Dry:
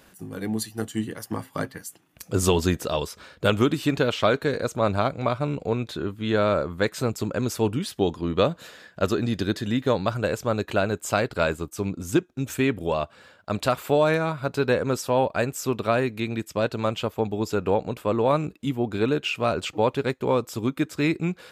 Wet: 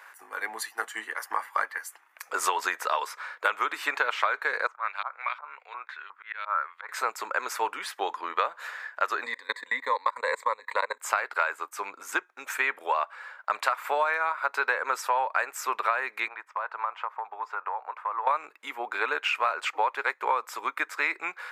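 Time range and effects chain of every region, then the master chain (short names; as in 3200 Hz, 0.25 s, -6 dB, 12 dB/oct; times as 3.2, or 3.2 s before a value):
4.67–6.89 LFO band-pass saw up 2.8 Hz 890–3600 Hz + auto swell 0.143 s
9.23–11.01 ripple EQ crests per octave 1, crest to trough 17 dB + level quantiser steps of 22 dB
16.28–18.27 band-pass 1000 Hz, Q 1.7 + compressor 5:1, threshold -32 dBFS
whole clip: HPF 510 Hz 24 dB/oct; band shelf 1400 Hz +14 dB; compressor 10:1, threshold -18 dBFS; gain -3.5 dB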